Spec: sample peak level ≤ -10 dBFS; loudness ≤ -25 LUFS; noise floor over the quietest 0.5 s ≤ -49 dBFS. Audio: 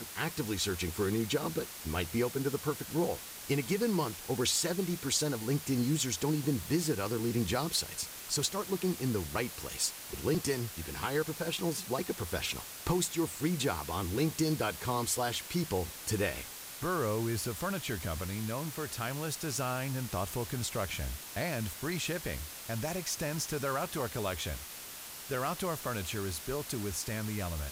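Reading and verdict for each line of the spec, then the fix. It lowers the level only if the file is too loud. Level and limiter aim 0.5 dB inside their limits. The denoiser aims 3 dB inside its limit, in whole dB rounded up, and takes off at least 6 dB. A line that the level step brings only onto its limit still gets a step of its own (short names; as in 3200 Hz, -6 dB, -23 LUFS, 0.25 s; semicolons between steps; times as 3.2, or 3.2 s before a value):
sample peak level -16.5 dBFS: OK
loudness -33.5 LUFS: OK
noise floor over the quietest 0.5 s -46 dBFS: fail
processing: denoiser 6 dB, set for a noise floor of -46 dBFS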